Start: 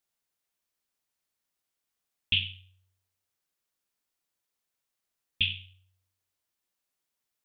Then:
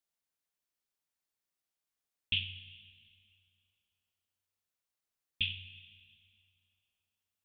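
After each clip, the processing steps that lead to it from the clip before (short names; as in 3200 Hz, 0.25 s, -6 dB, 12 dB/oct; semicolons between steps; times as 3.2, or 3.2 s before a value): reverb RT60 2.5 s, pre-delay 78 ms, DRR 13.5 dB; gain -6 dB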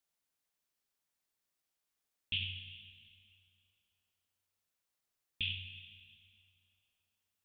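limiter -27 dBFS, peak gain reduction 9.5 dB; gain +2.5 dB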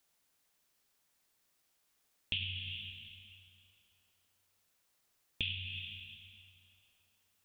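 compressor 3:1, threshold -47 dBFS, peak gain reduction 11.5 dB; gain +10 dB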